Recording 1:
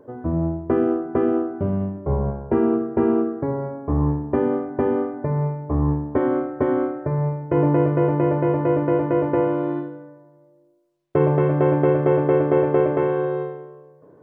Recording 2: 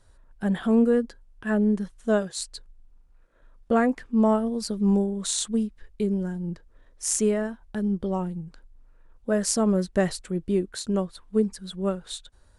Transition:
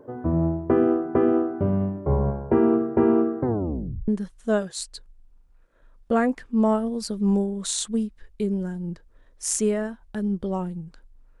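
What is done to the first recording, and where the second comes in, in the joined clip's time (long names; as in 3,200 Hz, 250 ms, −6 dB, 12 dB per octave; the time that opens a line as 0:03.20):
recording 1
0:03.40: tape stop 0.68 s
0:04.08: continue with recording 2 from 0:01.68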